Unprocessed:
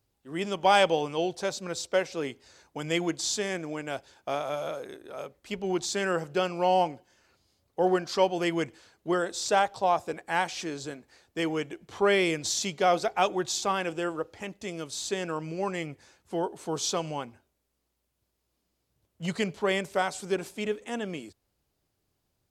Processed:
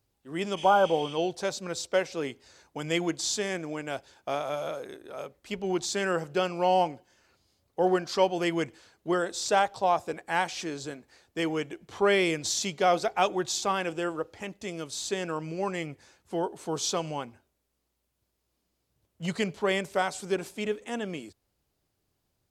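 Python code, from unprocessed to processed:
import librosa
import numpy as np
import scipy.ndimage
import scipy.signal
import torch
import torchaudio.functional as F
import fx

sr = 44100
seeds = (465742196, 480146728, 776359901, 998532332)

y = fx.spec_repair(x, sr, seeds[0], start_s=0.6, length_s=0.51, low_hz=1600.0, high_hz=11000.0, source='both')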